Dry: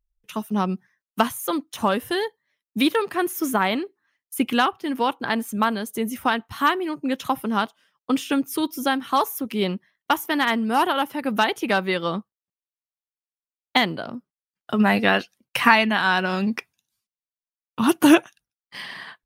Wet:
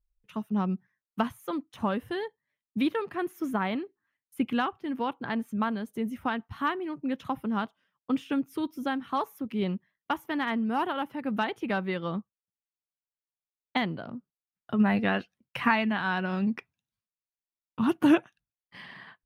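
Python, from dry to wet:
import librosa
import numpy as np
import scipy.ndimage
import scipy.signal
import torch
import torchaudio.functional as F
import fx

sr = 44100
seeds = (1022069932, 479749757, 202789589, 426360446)

y = fx.bass_treble(x, sr, bass_db=8, treble_db=-13)
y = F.gain(torch.from_numpy(y), -9.0).numpy()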